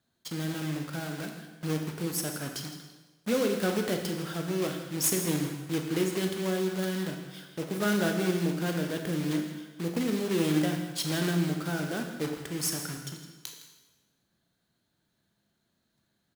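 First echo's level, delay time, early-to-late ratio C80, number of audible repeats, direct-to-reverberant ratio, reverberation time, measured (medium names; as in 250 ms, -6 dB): -16.0 dB, 161 ms, 6.5 dB, 1, 3.5 dB, 1.2 s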